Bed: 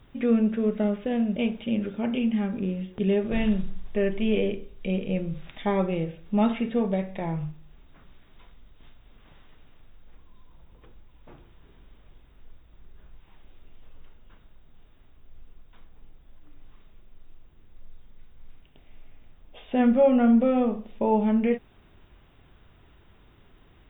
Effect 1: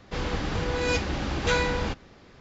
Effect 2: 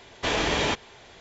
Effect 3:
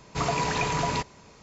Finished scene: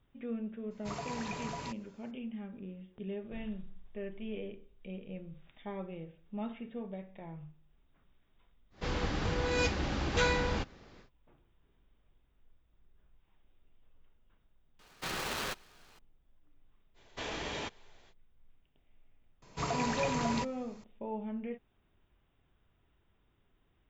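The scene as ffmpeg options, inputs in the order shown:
ffmpeg -i bed.wav -i cue0.wav -i cue1.wav -i cue2.wav -filter_complex "[3:a]asplit=2[link_01][link_02];[2:a]asplit=2[link_03][link_04];[0:a]volume=-16.5dB[link_05];[link_03]aeval=exprs='val(0)*sgn(sin(2*PI*830*n/s))':channel_layout=same[link_06];[link_01]atrim=end=1.42,asetpts=PTS-STARTPTS,volume=-14dB,afade=type=in:duration=0.02,afade=type=out:start_time=1.4:duration=0.02,adelay=700[link_07];[1:a]atrim=end=2.4,asetpts=PTS-STARTPTS,volume=-4.5dB,afade=type=in:duration=0.1,afade=type=out:start_time=2.3:duration=0.1,adelay=8700[link_08];[link_06]atrim=end=1.2,asetpts=PTS-STARTPTS,volume=-12dB,afade=type=in:duration=0.004:curve=hsin,afade=type=out:start_time=1.196:duration=0.004:curve=hsin,adelay=14790[link_09];[link_04]atrim=end=1.2,asetpts=PTS-STARTPTS,volume=-14dB,afade=type=in:duration=0.05,afade=type=out:start_time=1.15:duration=0.05,adelay=16940[link_10];[link_02]atrim=end=1.42,asetpts=PTS-STARTPTS,volume=-7.5dB,afade=type=in:duration=0.004:curve=hsin,afade=type=out:start_time=1.416:duration=0.004:curve=hsin,adelay=19420[link_11];[link_05][link_07][link_08][link_09][link_10][link_11]amix=inputs=6:normalize=0" out.wav

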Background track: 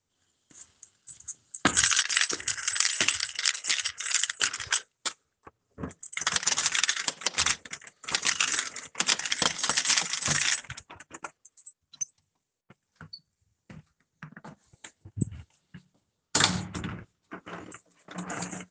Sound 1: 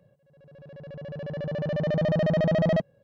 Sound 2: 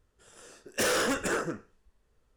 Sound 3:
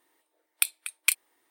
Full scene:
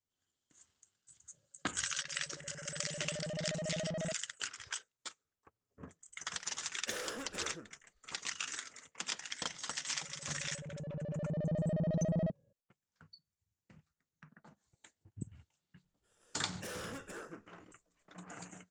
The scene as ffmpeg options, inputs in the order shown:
ffmpeg -i bed.wav -i cue0.wav -i cue1.wav -filter_complex "[1:a]asplit=2[link_01][link_02];[2:a]asplit=2[link_03][link_04];[0:a]volume=-14dB[link_05];[link_02]tiltshelf=frequency=780:gain=8.5[link_06];[link_01]atrim=end=3.03,asetpts=PTS-STARTPTS,volume=-16dB,afade=type=in:duration=0.004:curve=hsin,afade=type=out:start_time=3.026:duration=0.004:curve=hsin,adelay=1320[link_07];[link_03]atrim=end=2.36,asetpts=PTS-STARTPTS,volume=-15.5dB,afade=type=in:duration=0.004:curve=hsin,afade=type=out:start_time=2.356:duration=0.004:curve=hsin,adelay=6090[link_08];[link_06]atrim=end=3.03,asetpts=PTS-STARTPTS,volume=-15.5dB,afade=type=in:duration=0.004:curve=hsin,afade=type=out:start_time=3.026:duration=0.004:curve=hsin,adelay=9500[link_09];[link_04]atrim=end=2.36,asetpts=PTS-STARTPTS,volume=-17.5dB,afade=type=in:duration=0.004:curve=hsin,afade=type=out:start_time=2.356:duration=0.004:curve=hsin,adelay=15840[link_10];[link_05][link_07][link_08][link_09][link_10]amix=inputs=5:normalize=0" out.wav

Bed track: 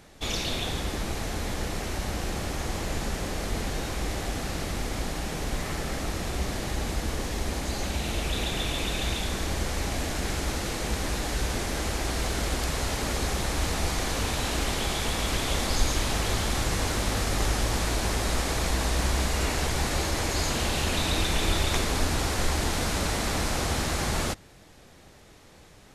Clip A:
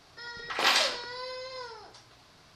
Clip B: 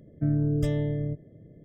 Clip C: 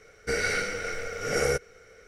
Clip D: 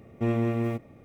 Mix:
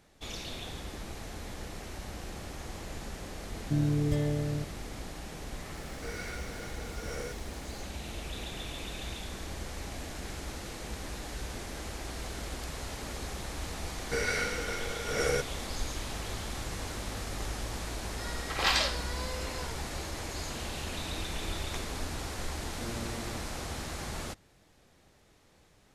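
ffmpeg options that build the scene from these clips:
ffmpeg -i bed.wav -i cue0.wav -i cue1.wav -i cue2.wav -i cue3.wav -filter_complex "[3:a]asplit=2[link_01][link_02];[0:a]volume=-10.5dB[link_03];[link_01]aeval=exprs='val(0)+0.5*0.0178*sgn(val(0))':channel_layout=same[link_04];[2:a]atrim=end=1.64,asetpts=PTS-STARTPTS,volume=-3dB,afade=type=in:duration=0.004:curve=hsin,afade=type=out:start_time=1.636:duration=0.004:curve=hsin,adelay=153909S[link_05];[link_04]atrim=end=2.07,asetpts=PTS-STARTPTS,volume=-16dB,afade=type=in:duration=0.004:curve=hsin,afade=type=out:start_time=2.066:duration=0.004:curve=hsin,adelay=5750[link_06];[link_02]atrim=end=2.07,asetpts=PTS-STARTPTS,volume=-4dB,afade=type=in:duration=0.004:curve=hsin,afade=type=out:start_time=2.066:duration=0.004:curve=hsin,adelay=13840[link_07];[1:a]atrim=end=2.55,asetpts=PTS-STARTPTS,volume=-3dB,afade=type=in:duration=0.004:curve=hsin,afade=type=out:start_time=2.546:duration=0.004:curve=hsin,adelay=18000[link_08];[4:a]atrim=end=1.04,asetpts=PTS-STARTPTS,volume=-15.5dB,afade=type=in:duration=0.004:curve=hsin,afade=type=out:start_time=1.036:duration=0.004:curve=hsin,adelay=996660S[link_09];[link_03][link_05][link_06][link_07][link_08][link_09]amix=inputs=6:normalize=0" out.wav

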